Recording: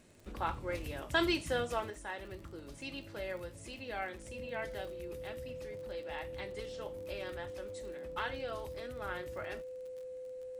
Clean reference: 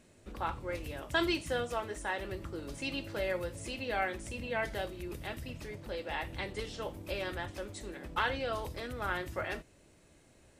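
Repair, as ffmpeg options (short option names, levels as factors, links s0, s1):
-af "adeclick=t=4,bandreject=f=510:w=30,asetnsamples=n=441:p=0,asendcmd='1.9 volume volume 6.5dB',volume=1"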